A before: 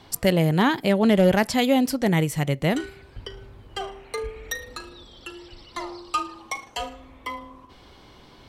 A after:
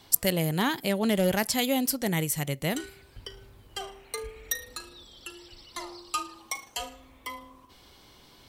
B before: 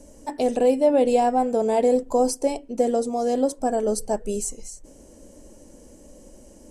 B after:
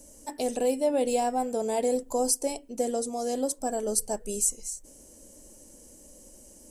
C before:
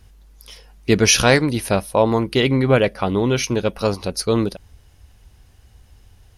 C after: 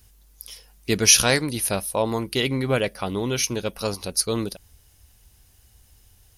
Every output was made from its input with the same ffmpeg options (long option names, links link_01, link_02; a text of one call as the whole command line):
ffmpeg -i in.wav -af "aemphasis=mode=production:type=75kf,volume=-7.5dB" out.wav